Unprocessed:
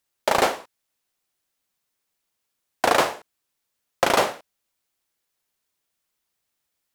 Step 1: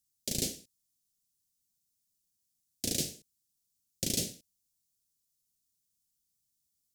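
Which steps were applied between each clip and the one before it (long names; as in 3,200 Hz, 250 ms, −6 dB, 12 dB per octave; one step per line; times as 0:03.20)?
Chebyshev band-stop filter 180–6,000 Hz, order 2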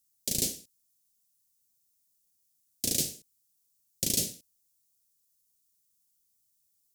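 high-shelf EQ 7,100 Hz +8.5 dB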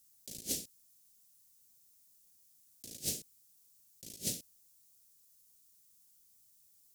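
compressor whose output falls as the input rises −38 dBFS, ratio −0.5
level −1 dB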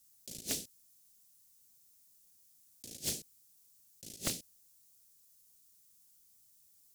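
highs frequency-modulated by the lows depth 1 ms
level +1 dB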